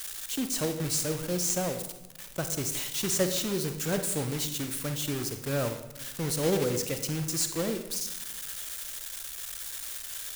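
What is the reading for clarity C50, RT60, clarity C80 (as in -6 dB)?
9.0 dB, 1.1 s, 11.5 dB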